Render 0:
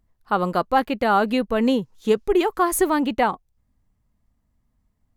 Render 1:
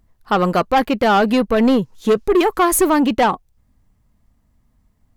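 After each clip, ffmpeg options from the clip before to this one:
ffmpeg -i in.wav -af "asoftclip=type=tanh:threshold=-17.5dB,volume=8.5dB" out.wav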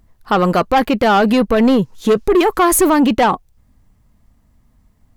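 ffmpeg -i in.wav -af "alimiter=limit=-13dB:level=0:latency=1:release=15,volume=5.5dB" out.wav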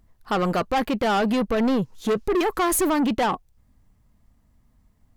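ffmpeg -i in.wav -af "asoftclip=type=tanh:threshold=-11dB,volume=-6dB" out.wav

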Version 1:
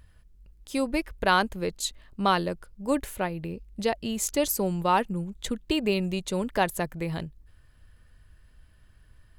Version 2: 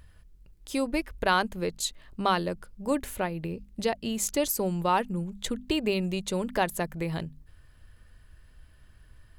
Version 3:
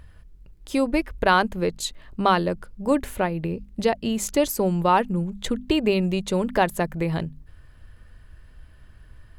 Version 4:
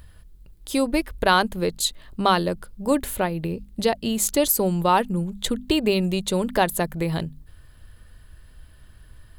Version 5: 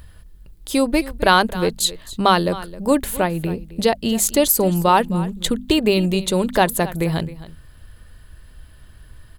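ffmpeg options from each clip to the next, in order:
ffmpeg -i in.wav -filter_complex "[0:a]bandreject=frequency=50:width_type=h:width=6,bandreject=frequency=100:width_type=h:width=6,bandreject=frequency=150:width_type=h:width=6,bandreject=frequency=200:width_type=h:width=6,bandreject=frequency=250:width_type=h:width=6,asplit=2[link_01][link_02];[link_02]acompressor=threshold=-33dB:ratio=6,volume=-0.5dB[link_03];[link_01][link_03]amix=inputs=2:normalize=0,volume=-3.5dB" out.wav
ffmpeg -i in.wav -af "highshelf=frequency=3400:gain=-7.5,volume=6.5dB" out.wav
ffmpeg -i in.wav -af "aexciter=amount=1.8:drive=5.8:freq=3300" out.wav
ffmpeg -i in.wav -af "aecho=1:1:264:0.141,volume=4dB" out.wav

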